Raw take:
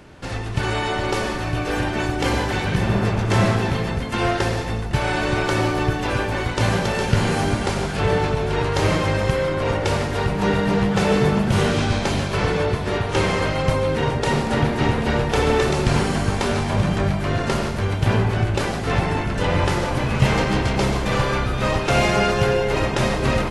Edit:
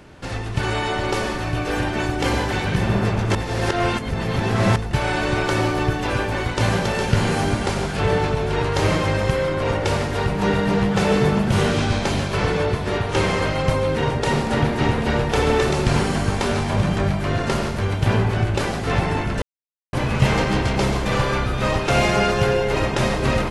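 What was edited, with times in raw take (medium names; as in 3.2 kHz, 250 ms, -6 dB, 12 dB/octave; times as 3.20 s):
3.35–4.76 s: reverse
19.42–19.93 s: mute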